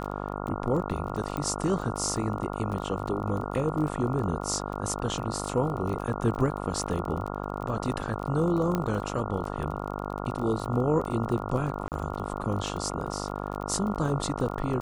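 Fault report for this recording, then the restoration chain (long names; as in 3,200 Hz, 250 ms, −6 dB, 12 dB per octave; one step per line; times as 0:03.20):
mains buzz 50 Hz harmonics 28 −34 dBFS
surface crackle 27 per second −33 dBFS
0:01.37: click −19 dBFS
0:08.75: click −15 dBFS
0:11.88–0:11.92: drop-out 38 ms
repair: click removal
hum removal 50 Hz, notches 28
repair the gap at 0:11.88, 38 ms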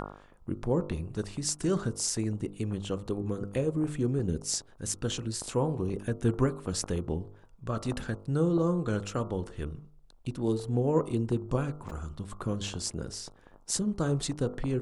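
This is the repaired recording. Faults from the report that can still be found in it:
none of them is left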